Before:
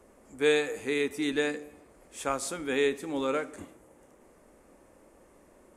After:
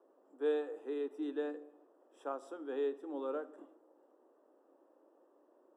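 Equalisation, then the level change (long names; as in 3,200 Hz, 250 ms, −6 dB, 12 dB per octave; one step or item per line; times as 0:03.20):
moving average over 20 samples
Chebyshev high-pass filter 300 Hz, order 4
−6.5 dB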